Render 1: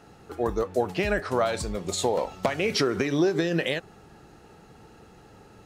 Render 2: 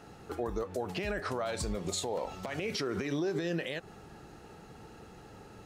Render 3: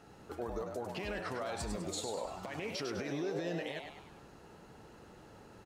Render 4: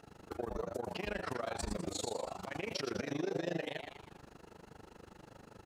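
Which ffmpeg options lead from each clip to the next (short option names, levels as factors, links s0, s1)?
-af "acompressor=threshold=0.0501:ratio=6,alimiter=limit=0.0631:level=0:latency=1:release=112"
-filter_complex "[0:a]asplit=7[s0][s1][s2][s3][s4][s5][s6];[s1]adelay=101,afreqshift=130,volume=0.501[s7];[s2]adelay=202,afreqshift=260,volume=0.232[s8];[s3]adelay=303,afreqshift=390,volume=0.106[s9];[s4]adelay=404,afreqshift=520,volume=0.049[s10];[s5]adelay=505,afreqshift=650,volume=0.0224[s11];[s6]adelay=606,afreqshift=780,volume=0.0104[s12];[s0][s7][s8][s9][s10][s11][s12]amix=inputs=7:normalize=0,volume=0.531"
-af "tremolo=f=25:d=0.947,volume=1.58"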